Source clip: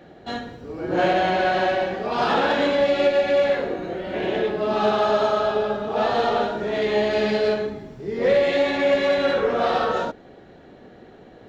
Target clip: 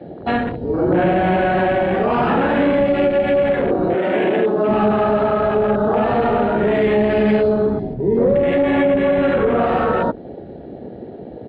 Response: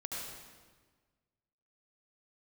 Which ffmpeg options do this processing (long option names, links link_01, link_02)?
-filter_complex "[0:a]asettb=1/sr,asplit=3[link_01][link_02][link_03];[link_01]atrim=end=7.934[link_04];[link_02]atrim=start=7.93:end=9.23,asetpts=PTS-STARTPTS,afade=type=in:duration=0.004:curve=qsin,afade=type=out:start_time=1.296:duration=0.004:curve=qsin,aemphasis=mode=reproduction:type=75fm[link_05];[link_03]atrim=start=9.226[link_06];[link_04][link_05]acrossfade=duration=0.004:curve1=hsin:curve2=qsin[link_07];[link_07][link_06]acrossfade=duration=0.004:curve1=qsin:curve2=hsin,acrossover=split=290[link_08][link_09];[link_09]acompressor=threshold=-28dB:ratio=12[link_10];[link_08][link_10]amix=inputs=2:normalize=0,aresample=11025,aresample=44100,asplit=2[link_11][link_12];[link_12]alimiter=limit=-24dB:level=0:latency=1:release=13,volume=2.5dB[link_13];[link_11][link_13]amix=inputs=2:normalize=0,asettb=1/sr,asplit=3[link_14][link_15][link_16];[link_14]atrim=end=3.954[link_17];[link_15]atrim=start=3.95:end=4.69,asetpts=PTS-STARTPTS,afade=type=in:duration=0.004:curve=qsin,afade=type=out:start_time=0.736:duration=0.004:curve=qsin,highpass=210[link_18];[link_16]atrim=start=4.686[link_19];[link_17][link_18]acrossfade=duration=0.004:curve1=hsin:curve2=qsin[link_20];[link_20][link_19]acrossfade=duration=0.004:curve1=qsin:curve2=hsin,afwtdn=0.0224,volume=6.5dB"